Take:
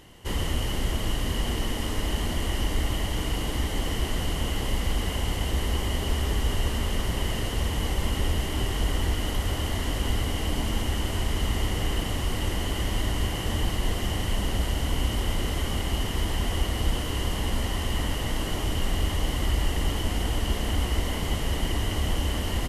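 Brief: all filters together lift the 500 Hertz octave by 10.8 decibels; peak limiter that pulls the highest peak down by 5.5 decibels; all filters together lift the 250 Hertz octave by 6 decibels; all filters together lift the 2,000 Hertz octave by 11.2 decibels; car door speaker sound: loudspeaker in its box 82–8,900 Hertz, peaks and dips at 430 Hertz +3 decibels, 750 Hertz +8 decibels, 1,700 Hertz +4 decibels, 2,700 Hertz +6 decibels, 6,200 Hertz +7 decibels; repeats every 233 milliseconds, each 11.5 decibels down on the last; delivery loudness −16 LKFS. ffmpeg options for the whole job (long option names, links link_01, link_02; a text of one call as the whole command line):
ffmpeg -i in.wav -af "equalizer=frequency=250:width_type=o:gain=4.5,equalizer=frequency=500:width_type=o:gain=8.5,equalizer=frequency=2000:width_type=o:gain=8.5,alimiter=limit=-16dB:level=0:latency=1,highpass=82,equalizer=frequency=430:width_type=q:width=4:gain=3,equalizer=frequency=750:width_type=q:width=4:gain=8,equalizer=frequency=1700:width_type=q:width=4:gain=4,equalizer=frequency=2700:width_type=q:width=4:gain=6,equalizer=frequency=6200:width_type=q:width=4:gain=7,lowpass=frequency=8900:width=0.5412,lowpass=frequency=8900:width=1.3066,aecho=1:1:233|466|699:0.266|0.0718|0.0194,volume=8.5dB" out.wav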